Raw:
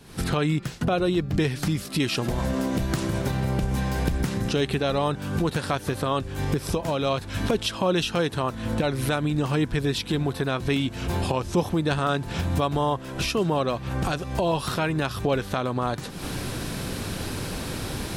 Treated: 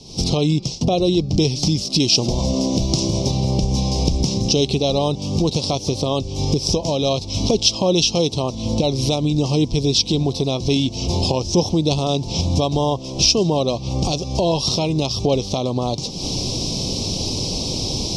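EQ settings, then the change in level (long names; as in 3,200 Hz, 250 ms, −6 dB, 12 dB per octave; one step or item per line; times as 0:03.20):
Butterworth band-reject 1,600 Hz, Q 0.72
low-pass with resonance 5,500 Hz, resonance Q 5.7
notch filter 1,800 Hz, Q 8.4
+6.0 dB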